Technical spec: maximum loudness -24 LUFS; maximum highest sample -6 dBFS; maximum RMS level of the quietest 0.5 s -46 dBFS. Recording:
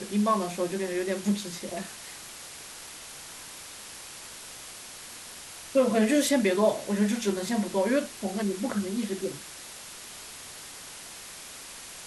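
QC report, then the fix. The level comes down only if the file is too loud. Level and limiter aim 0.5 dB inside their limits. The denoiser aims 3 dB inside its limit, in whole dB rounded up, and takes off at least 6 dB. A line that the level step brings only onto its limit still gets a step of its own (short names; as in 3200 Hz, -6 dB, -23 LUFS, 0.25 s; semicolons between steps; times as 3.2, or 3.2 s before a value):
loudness -27.5 LUFS: OK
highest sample -12.0 dBFS: OK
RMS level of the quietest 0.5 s -44 dBFS: fail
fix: denoiser 6 dB, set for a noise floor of -44 dBFS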